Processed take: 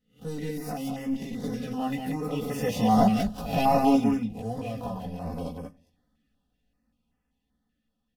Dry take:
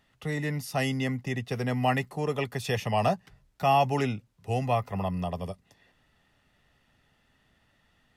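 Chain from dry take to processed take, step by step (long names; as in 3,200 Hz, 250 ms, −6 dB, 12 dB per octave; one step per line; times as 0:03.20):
peak hold with a rise ahead of every peak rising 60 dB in 0.37 s
source passing by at 0:03.29, 8 m/s, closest 2.1 metres
leveller curve on the samples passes 2
in parallel at −2 dB: compressor whose output falls as the input rises −45 dBFS, ratio −0.5
on the sum: graphic EQ with 10 bands 125 Hz +11 dB, 250 Hz +4 dB, 2,000 Hz −5 dB, 8,000 Hz −5 dB
on a send at −16.5 dB: convolution reverb RT60 0.45 s, pre-delay 7 ms
on the sum: multi-voice chorus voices 6, 0.34 Hz, delay 16 ms, depth 2.6 ms
high-shelf EQ 4,200 Hz +5 dB
comb filter 4 ms, depth 87%
single-tap delay 183 ms −4 dB
notch on a step sequencer 5.2 Hz 940–3,900 Hz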